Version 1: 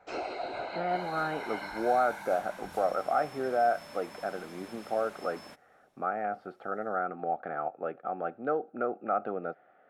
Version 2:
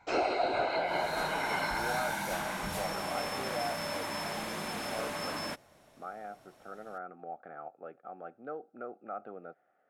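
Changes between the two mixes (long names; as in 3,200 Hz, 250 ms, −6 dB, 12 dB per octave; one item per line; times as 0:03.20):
speech −11.0 dB
first sound +6.5 dB
second sound +12.0 dB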